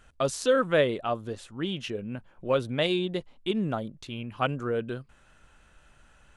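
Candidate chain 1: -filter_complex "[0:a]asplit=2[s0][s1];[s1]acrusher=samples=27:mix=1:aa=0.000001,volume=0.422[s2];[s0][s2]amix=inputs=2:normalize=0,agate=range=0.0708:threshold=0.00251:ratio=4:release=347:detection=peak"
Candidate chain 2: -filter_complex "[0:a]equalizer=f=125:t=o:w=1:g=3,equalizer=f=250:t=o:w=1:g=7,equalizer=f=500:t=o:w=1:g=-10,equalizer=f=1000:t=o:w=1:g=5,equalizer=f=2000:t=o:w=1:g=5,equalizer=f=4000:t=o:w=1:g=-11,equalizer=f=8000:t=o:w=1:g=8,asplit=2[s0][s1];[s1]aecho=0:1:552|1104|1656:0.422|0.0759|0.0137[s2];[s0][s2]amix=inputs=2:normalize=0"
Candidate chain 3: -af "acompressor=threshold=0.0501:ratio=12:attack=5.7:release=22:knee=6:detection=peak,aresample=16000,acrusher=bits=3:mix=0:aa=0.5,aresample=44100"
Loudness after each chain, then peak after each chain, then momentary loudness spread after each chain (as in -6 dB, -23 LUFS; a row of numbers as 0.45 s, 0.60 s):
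-27.5 LUFS, -28.5 LUFS, -34.5 LUFS; -9.0 dBFS, -10.5 dBFS, -15.0 dBFS; 13 LU, 10 LU, 14 LU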